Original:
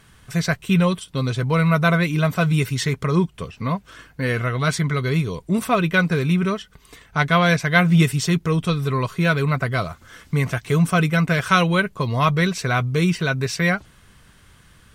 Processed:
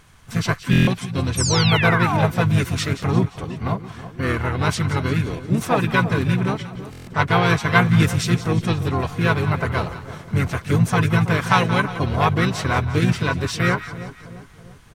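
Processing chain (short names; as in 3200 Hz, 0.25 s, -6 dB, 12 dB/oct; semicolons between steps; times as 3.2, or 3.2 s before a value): split-band echo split 1100 Hz, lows 0.329 s, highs 0.176 s, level -13 dB; painted sound fall, 1.37–2.25, 730–9000 Hz -23 dBFS; harmoniser -7 st -3 dB, -5 st -7 dB, +5 st -13 dB; stuck buffer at 0.71/6.91, samples 1024, times 6; gain -2.5 dB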